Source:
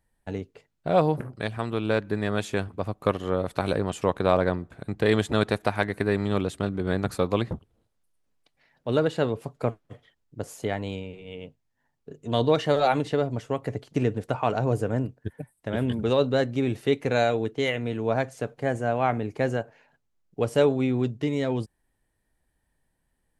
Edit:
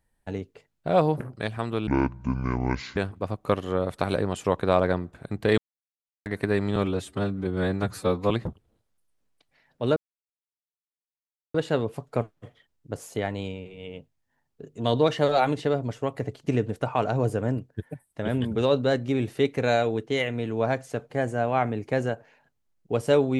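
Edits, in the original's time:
0:01.87–0:02.54: play speed 61%
0:05.15–0:05.83: silence
0:06.33–0:07.36: time-stretch 1.5×
0:09.02: splice in silence 1.58 s

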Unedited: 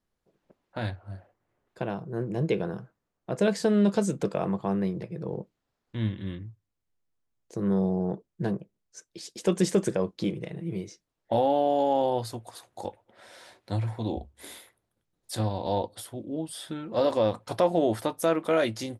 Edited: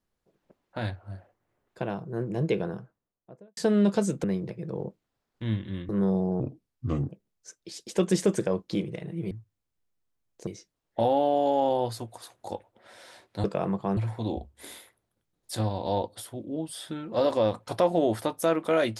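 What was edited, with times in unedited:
0:02.56–0:03.57: fade out and dull
0:04.24–0:04.77: move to 0:13.77
0:06.42–0:07.58: move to 0:10.80
0:08.09–0:08.58: play speed 71%

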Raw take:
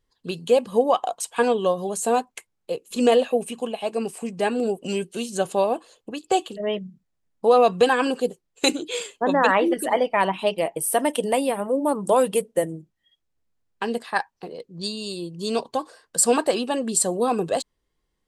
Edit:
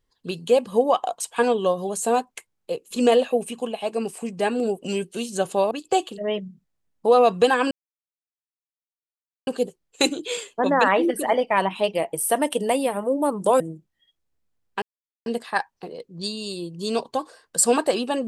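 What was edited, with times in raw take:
0:05.71–0:06.10: remove
0:08.10: splice in silence 1.76 s
0:12.23–0:12.64: remove
0:13.86: splice in silence 0.44 s

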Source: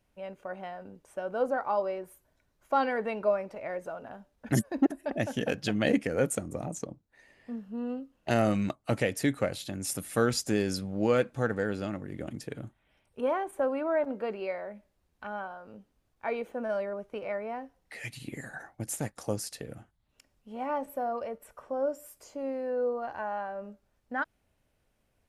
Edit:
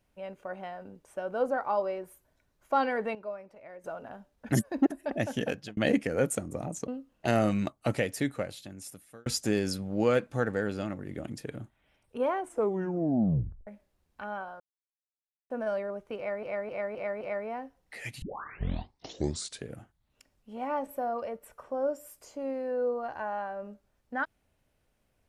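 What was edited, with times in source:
0:03.15–0:03.84: clip gain −11.5 dB
0:05.43–0:05.77: fade out
0:06.88–0:07.91: remove
0:08.90–0:10.29: fade out
0:13.41: tape stop 1.29 s
0:15.63–0:16.53: silence
0:17.20–0:17.46: repeat, 5 plays
0:18.21: tape start 1.49 s

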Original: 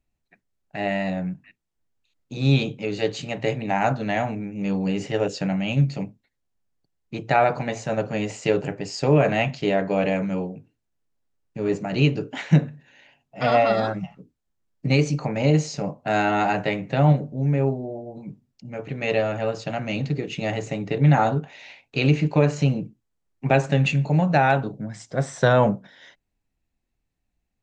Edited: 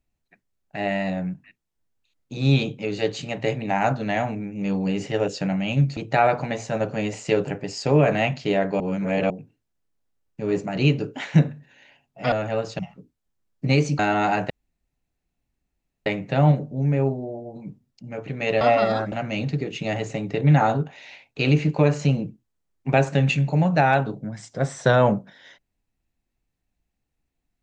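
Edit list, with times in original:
0:05.97–0:07.14: remove
0:09.97–0:10.47: reverse
0:13.49–0:14.00: swap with 0:19.22–0:19.69
0:15.20–0:16.16: remove
0:16.67: splice in room tone 1.56 s

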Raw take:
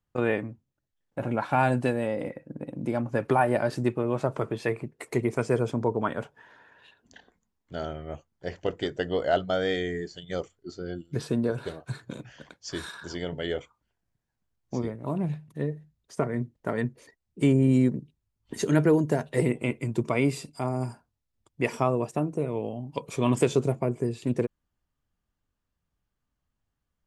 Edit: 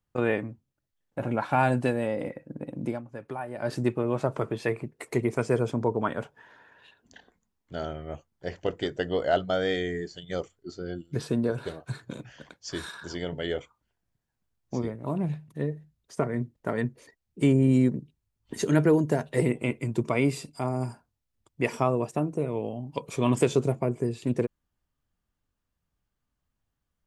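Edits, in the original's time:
0:02.87–0:03.71: duck −13 dB, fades 0.14 s

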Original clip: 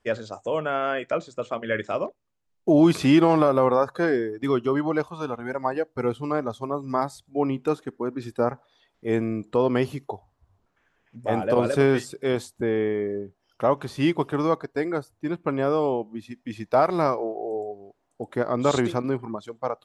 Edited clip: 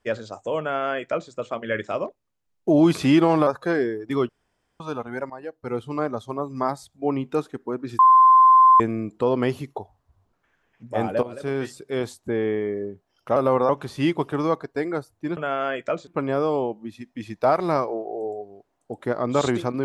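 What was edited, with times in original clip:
0:00.60–0:01.30: duplicate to 0:15.37
0:03.47–0:03.80: move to 0:13.69
0:04.62–0:05.13: fill with room tone
0:05.63–0:06.30: fade in, from −15 dB
0:08.32–0:09.13: beep over 1,040 Hz −9.5 dBFS
0:11.56–0:12.88: fade in equal-power, from −18 dB

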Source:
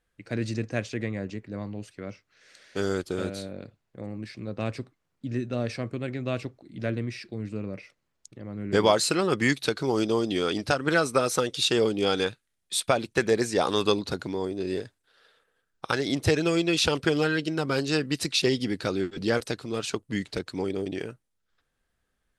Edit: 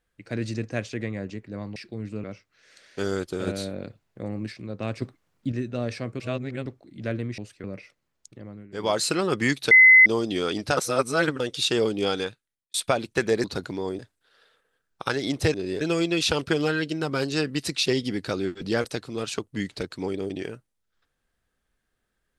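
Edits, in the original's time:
0:01.76–0:02.02: swap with 0:07.16–0:07.64
0:03.25–0:04.30: clip gain +4.5 dB
0:04.80–0:05.30: clip gain +6.5 dB
0:05.98–0:06.44: reverse
0:08.39–0:09.03: duck −16 dB, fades 0.29 s
0:09.71–0:10.06: beep over 2,040 Hz −9 dBFS
0:10.77–0:11.40: reverse
0:12.03–0:12.74: fade out
0:13.44–0:14.00: remove
0:14.55–0:14.82: move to 0:16.37

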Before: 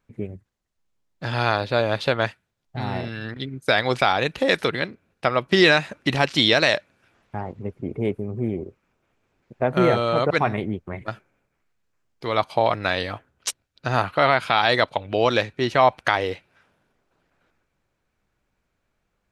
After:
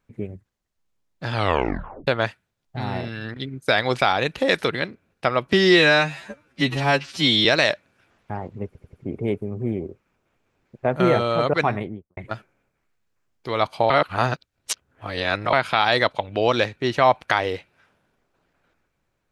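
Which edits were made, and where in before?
0:01.33: tape stop 0.74 s
0:05.53–0:06.49: time-stretch 2×
0:07.70: stutter 0.09 s, 4 plays
0:10.43–0:10.94: fade out and dull
0:12.67–0:14.30: reverse

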